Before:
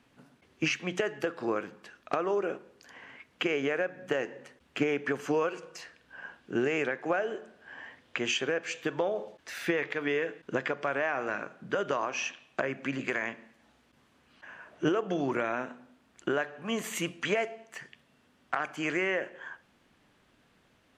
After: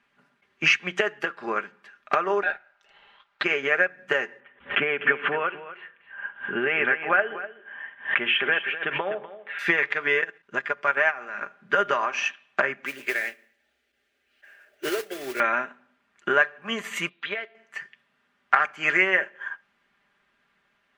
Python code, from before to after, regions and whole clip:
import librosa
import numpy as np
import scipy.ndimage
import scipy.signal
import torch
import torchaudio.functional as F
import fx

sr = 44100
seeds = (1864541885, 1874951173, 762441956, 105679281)

y = fx.chain(x, sr, fx.peak_eq(hz=10000.0, db=-11.5, octaves=0.87),
    fx.ring_mod(carrier_hz=1100.0), at=(2.43, 3.44))
y = fx.chain(y, sr, fx.ellip_lowpass(hz=3300.0, order=4, stop_db=40),
    fx.echo_single(ms=249, db=-9.5),
    fx.pre_swell(db_per_s=120.0), at=(4.4, 9.59))
y = fx.chain(y, sr, fx.high_shelf(hz=7200.0, db=6.0),
    fx.level_steps(step_db=10), at=(10.21, 11.41))
y = fx.chain(y, sr, fx.fixed_phaser(hz=430.0, stages=4),
    fx.mod_noise(seeds[0], snr_db=10), at=(12.85, 15.4))
y = fx.chain(y, sr, fx.ladder_lowpass(hz=4000.0, resonance_pct=75),
    fx.peak_eq(hz=570.0, db=5.0, octaves=2.9), at=(17.09, 17.55))
y = fx.peak_eq(y, sr, hz=1700.0, db=14.0, octaves=2.2)
y = y + 0.54 * np.pad(y, (int(5.0 * sr / 1000.0), 0))[:len(y)]
y = fx.upward_expand(y, sr, threshold_db=-40.0, expansion=1.5)